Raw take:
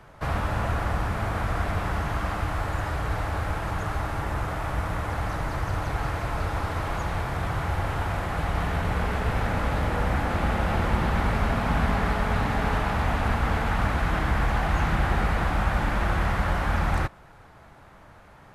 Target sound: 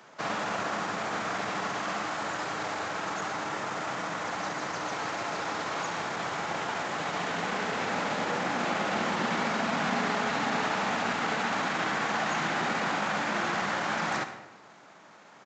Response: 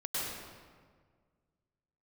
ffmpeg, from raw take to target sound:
-filter_complex "[0:a]highpass=f=190:w=0.5412,highpass=f=190:w=1.3066,atempo=1.2,crystalizer=i=3:c=0,asplit=2[a][b];[1:a]atrim=start_sample=2205,asetrate=83790,aresample=44100[c];[b][c]afir=irnorm=-1:irlink=0,volume=-7.5dB[d];[a][d]amix=inputs=2:normalize=0,aresample=16000,aresample=44100,asplit=2[e][f];[f]adelay=140,highpass=300,lowpass=3.4k,asoftclip=type=hard:threshold=-22.5dB,volume=-23dB[g];[e][g]amix=inputs=2:normalize=0,volume=-3.5dB"

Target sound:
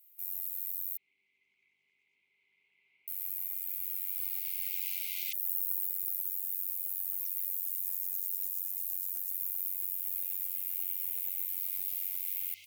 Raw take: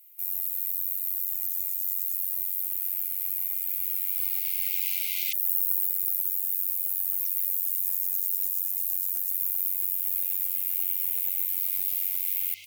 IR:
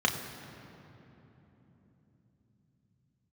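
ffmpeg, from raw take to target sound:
-filter_complex "[0:a]asettb=1/sr,asplit=3[a][b][c];[a]atrim=end=0.974[d];[b]atrim=start=0.97:end=3.08,asetpts=PTS-STARTPTS,afade=t=in:d=0.004:c=qsin,afade=t=out:st=2.106:d=0.004:c=qsin,highpass=230,equalizer=f=260:t=q:w=4:g=3,equalizer=f=400:t=q:w=4:g=7,equalizer=f=600:t=q:w=4:g=-6,equalizer=f=940:t=q:w=4:g=5,equalizer=f=1.9k:t=q:w=4:g=3,lowpass=f=2.2k:w=0.5412,lowpass=f=2.2k:w=1.3066[e];[c]atrim=start=3.076[f];[d][e]acrossfade=d=0.004:c1=hsin:c2=qsin[g];[g][f]acrossfade=d=0.004:c1=qsin:c2=hsin,volume=-7.5dB"

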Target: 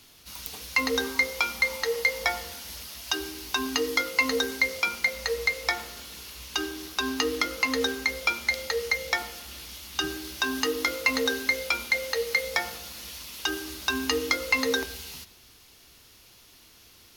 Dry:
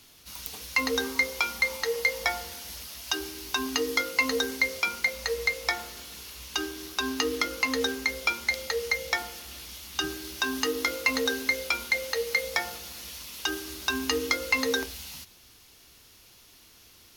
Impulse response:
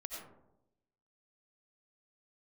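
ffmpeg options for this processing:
-filter_complex "[0:a]asplit=2[a][b];[b]aresample=11025,aresample=44100[c];[1:a]atrim=start_sample=2205[d];[c][d]afir=irnorm=-1:irlink=0,volume=-12dB[e];[a][e]amix=inputs=2:normalize=0"

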